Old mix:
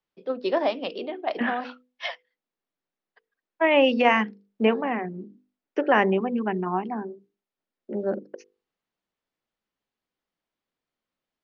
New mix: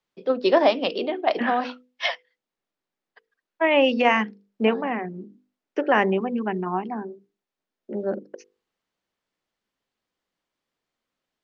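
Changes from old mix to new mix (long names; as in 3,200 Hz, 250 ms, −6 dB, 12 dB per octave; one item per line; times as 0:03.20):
first voice +6.0 dB
master: remove high-frequency loss of the air 55 metres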